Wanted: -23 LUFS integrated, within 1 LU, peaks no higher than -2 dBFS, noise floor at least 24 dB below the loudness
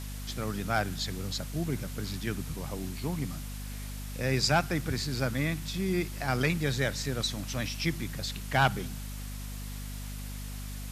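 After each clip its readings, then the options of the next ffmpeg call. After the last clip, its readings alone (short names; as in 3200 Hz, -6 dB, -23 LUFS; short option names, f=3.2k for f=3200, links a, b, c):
hum 50 Hz; harmonics up to 250 Hz; hum level -36 dBFS; noise floor -39 dBFS; noise floor target -56 dBFS; loudness -32.0 LUFS; peak -10.0 dBFS; loudness target -23.0 LUFS
-> -af "bandreject=f=50:t=h:w=4,bandreject=f=100:t=h:w=4,bandreject=f=150:t=h:w=4,bandreject=f=200:t=h:w=4,bandreject=f=250:t=h:w=4"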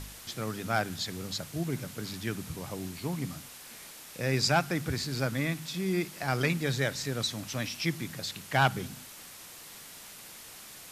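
hum none; noise floor -48 dBFS; noise floor target -56 dBFS
-> -af "afftdn=nr=8:nf=-48"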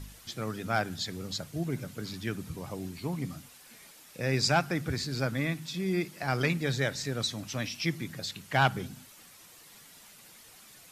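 noise floor -54 dBFS; noise floor target -56 dBFS
-> -af "afftdn=nr=6:nf=-54"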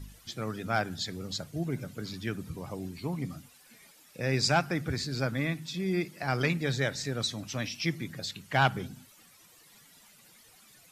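noise floor -58 dBFS; loudness -32.0 LUFS; peak -10.0 dBFS; loudness target -23.0 LUFS
-> -af "volume=9dB,alimiter=limit=-2dB:level=0:latency=1"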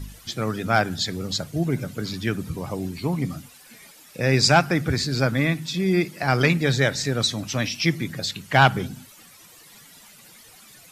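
loudness -23.0 LUFS; peak -2.0 dBFS; noise floor -49 dBFS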